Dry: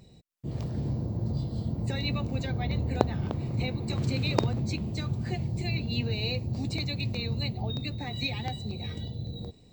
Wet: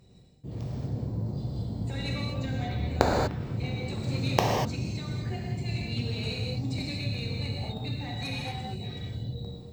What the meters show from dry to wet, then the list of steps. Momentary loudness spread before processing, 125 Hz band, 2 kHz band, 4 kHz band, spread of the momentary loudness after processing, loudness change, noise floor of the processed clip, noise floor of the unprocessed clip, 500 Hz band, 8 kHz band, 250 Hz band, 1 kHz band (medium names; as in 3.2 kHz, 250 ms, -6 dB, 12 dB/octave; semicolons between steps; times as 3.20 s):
8 LU, -1.0 dB, +0.5 dB, -1.0 dB, 10 LU, -0.5 dB, -45 dBFS, -55 dBFS, +2.0 dB, +4.5 dB, -1.5 dB, +5.0 dB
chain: Chebyshev shaper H 7 -13 dB, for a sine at -3.5 dBFS; gated-style reverb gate 270 ms flat, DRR -3 dB